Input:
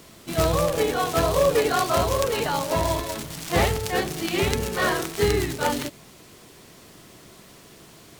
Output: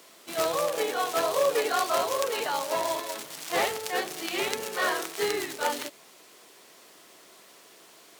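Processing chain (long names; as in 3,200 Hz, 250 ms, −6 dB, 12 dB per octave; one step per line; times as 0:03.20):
high-pass filter 440 Hz 12 dB per octave
level −3 dB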